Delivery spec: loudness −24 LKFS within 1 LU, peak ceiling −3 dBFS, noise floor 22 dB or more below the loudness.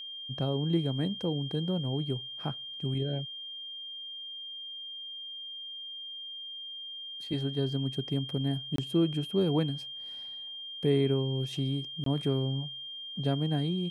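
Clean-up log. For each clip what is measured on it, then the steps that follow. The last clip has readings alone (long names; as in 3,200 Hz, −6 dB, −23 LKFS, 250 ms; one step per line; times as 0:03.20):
number of dropouts 2; longest dropout 23 ms; interfering tone 3,200 Hz; level of the tone −39 dBFS; integrated loudness −32.5 LKFS; sample peak −15.0 dBFS; target loudness −24.0 LKFS
→ repair the gap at 0:08.76/0:12.04, 23 ms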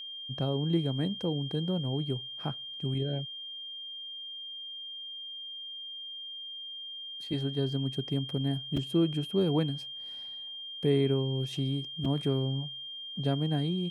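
number of dropouts 0; interfering tone 3,200 Hz; level of the tone −39 dBFS
→ notch filter 3,200 Hz, Q 30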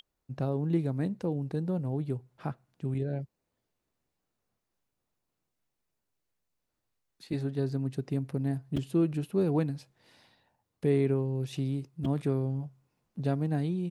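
interfering tone none found; integrated loudness −31.5 LKFS; sample peak −15.5 dBFS; target loudness −24.0 LKFS
→ level +7.5 dB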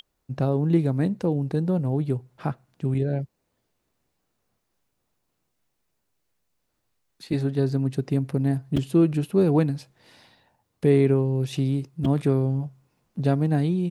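integrated loudness −24.0 LKFS; sample peak −8.0 dBFS; background noise floor −76 dBFS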